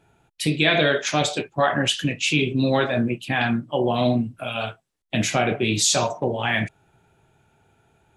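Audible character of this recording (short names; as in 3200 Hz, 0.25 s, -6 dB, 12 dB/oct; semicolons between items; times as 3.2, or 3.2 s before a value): noise floor -66 dBFS; spectral tilt -4.0 dB/oct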